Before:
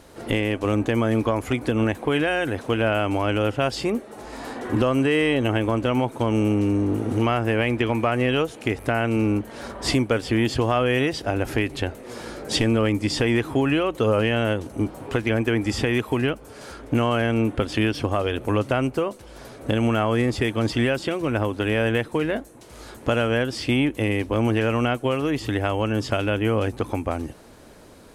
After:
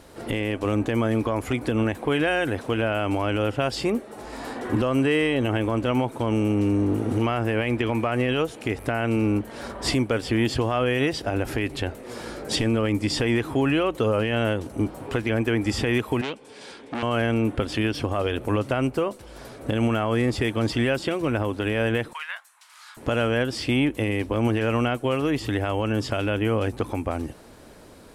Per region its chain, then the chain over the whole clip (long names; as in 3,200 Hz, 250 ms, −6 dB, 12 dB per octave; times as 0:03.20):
0:16.21–0:17.03: loudspeaker in its box 230–9,000 Hz, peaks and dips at 330 Hz −4 dB, 630 Hz −8 dB, 1,300 Hz −10 dB, 2,400 Hz +3 dB, 3,500 Hz +5 dB, 6,800 Hz −3 dB + saturating transformer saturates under 1,800 Hz
0:22.13–0:22.97: Butterworth high-pass 1,000 Hz + high-shelf EQ 7,000 Hz −5 dB
whole clip: notch filter 6,400 Hz, Q 24; brickwall limiter −13.5 dBFS